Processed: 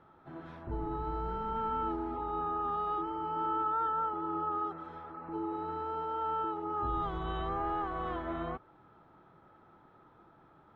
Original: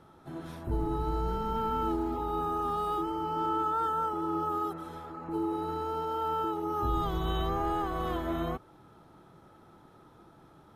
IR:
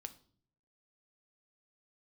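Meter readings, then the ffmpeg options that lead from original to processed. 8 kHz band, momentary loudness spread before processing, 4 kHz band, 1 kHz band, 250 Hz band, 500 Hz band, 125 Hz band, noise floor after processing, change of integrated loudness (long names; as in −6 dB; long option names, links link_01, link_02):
can't be measured, 7 LU, −8.5 dB, −2.0 dB, −6.0 dB, −5.0 dB, −7.0 dB, −62 dBFS, −3.0 dB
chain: -af "lowpass=1900,tiltshelf=frequency=800:gain=-4.5,volume=-2.5dB"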